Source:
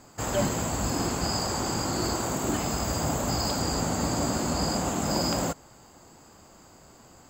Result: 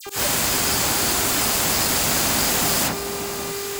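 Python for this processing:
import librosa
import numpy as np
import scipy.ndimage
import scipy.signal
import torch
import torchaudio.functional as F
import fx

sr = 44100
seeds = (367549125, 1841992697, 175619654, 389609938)

p1 = fx.envelope_flatten(x, sr, power=0.3)
p2 = fx.dmg_buzz(p1, sr, base_hz=400.0, harmonics=20, level_db=-46.0, tilt_db=-6, odd_only=False)
p3 = fx.fold_sine(p2, sr, drive_db=16, ceiling_db=-11.0)
p4 = p2 + (p3 * 10.0 ** (-8.5 / 20.0))
p5 = fx.stretch_vocoder_free(p4, sr, factor=0.52)
p6 = fx.dispersion(p5, sr, late='lows', ms=67.0, hz=2200.0)
p7 = fx.auto_swell(p6, sr, attack_ms=118.0)
p8 = p7 + fx.echo_alternate(p7, sr, ms=580, hz=1100.0, feedback_pct=64, wet_db=-7.0, dry=0)
y = p8 * 10.0 ** (2.0 / 20.0)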